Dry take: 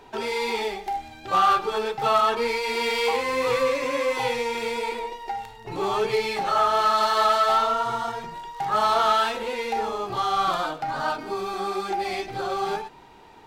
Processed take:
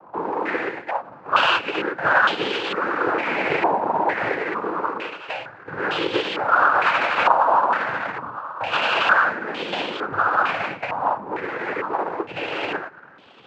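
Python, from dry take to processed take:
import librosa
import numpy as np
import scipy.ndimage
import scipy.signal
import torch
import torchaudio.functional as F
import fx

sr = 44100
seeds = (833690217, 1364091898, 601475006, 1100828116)

y = fx.halfwave_hold(x, sr)
y = fx.noise_vocoder(y, sr, seeds[0], bands=8)
y = fx.filter_held_lowpass(y, sr, hz=2.2, low_hz=970.0, high_hz=3200.0)
y = y * librosa.db_to_amplitude(-5.0)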